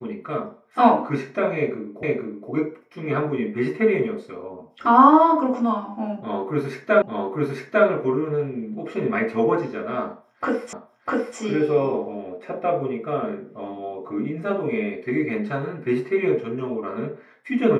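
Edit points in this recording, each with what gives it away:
2.03 repeat of the last 0.47 s
7.02 repeat of the last 0.85 s
10.73 repeat of the last 0.65 s

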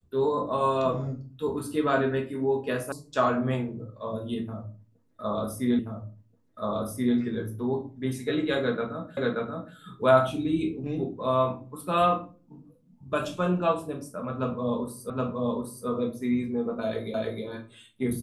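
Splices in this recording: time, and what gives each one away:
2.92 sound cut off
5.79 repeat of the last 1.38 s
9.17 repeat of the last 0.58 s
15.1 repeat of the last 0.77 s
17.14 repeat of the last 0.31 s

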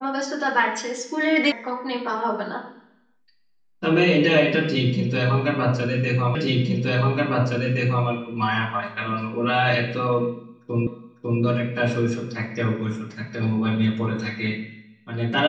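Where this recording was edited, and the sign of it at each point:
1.52 sound cut off
6.35 repeat of the last 1.72 s
10.87 repeat of the last 0.55 s

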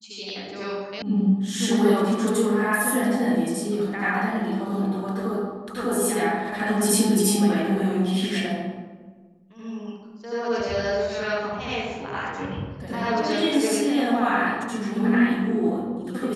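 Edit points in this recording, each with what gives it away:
1.02 sound cut off

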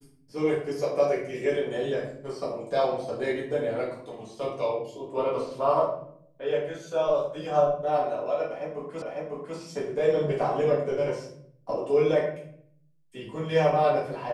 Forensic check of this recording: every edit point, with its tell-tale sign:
9.02 repeat of the last 0.55 s

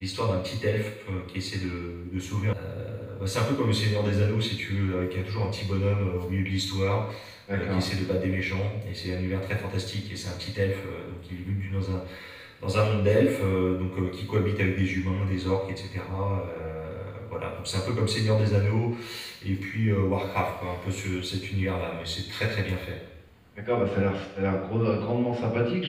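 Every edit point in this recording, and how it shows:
2.53 sound cut off

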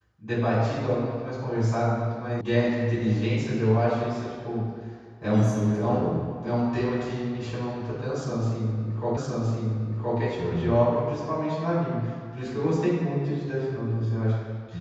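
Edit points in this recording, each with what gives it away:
2.41 sound cut off
9.17 repeat of the last 1.02 s

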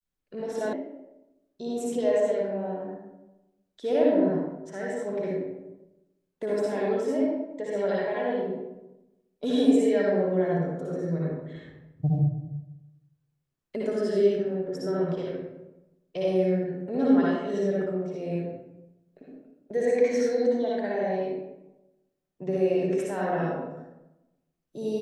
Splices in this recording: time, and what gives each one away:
0.73 sound cut off

